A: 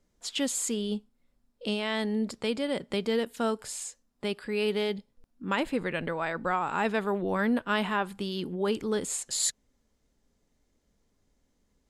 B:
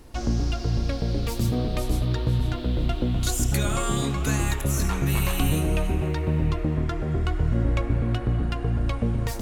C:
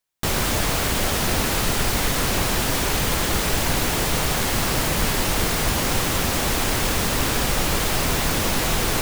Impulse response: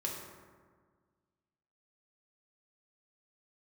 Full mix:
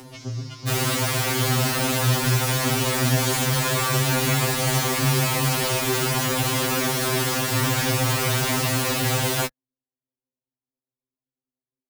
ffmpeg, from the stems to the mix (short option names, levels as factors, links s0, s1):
-filter_complex "[0:a]lowpass=f=1100:w=0.5412,lowpass=f=1100:w=1.3066,volume=0.119[s0];[1:a]acompressor=mode=upward:threshold=0.0501:ratio=2.5,volume=1[s1];[2:a]adelay=450,volume=1.19[s2];[s0][s1][s2]amix=inputs=3:normalize=0,highpass=42,afftfilt=real='re*2.45*eq(mod(b,6),0)':imag='im*2.45*eq(mod(b,6),0)':win_size=2048:overlap=0.75"